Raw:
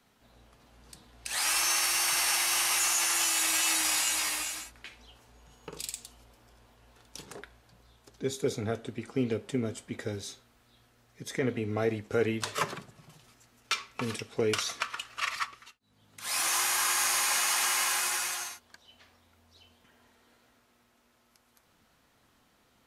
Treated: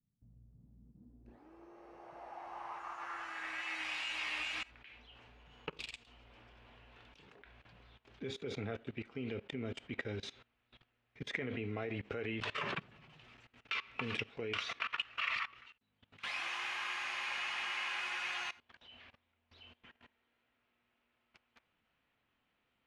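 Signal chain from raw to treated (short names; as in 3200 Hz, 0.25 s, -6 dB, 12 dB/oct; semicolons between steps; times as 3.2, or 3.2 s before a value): 17.29–17.71 buzz 50 Hz, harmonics 31, -56 dBFS -1 dB/oct; level quantiser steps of 21 dB; low-pass sweep 150 Hz -> 2700 Hz, 0.5–3.95; gain +2 dB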